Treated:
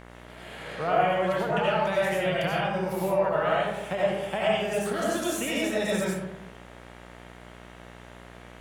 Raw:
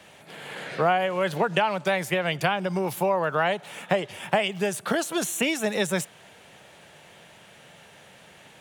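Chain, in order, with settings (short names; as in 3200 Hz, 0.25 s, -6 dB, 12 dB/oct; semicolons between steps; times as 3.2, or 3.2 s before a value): digital reverb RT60 1 s, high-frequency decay 0.45×, pre-delay 50 ms, DRR -6 dB; harmonic-percussive split percussive -4 dB; buzz 60 Hz, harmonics 37, -40 dBFS -3 dB/oct; gain -7.5 dB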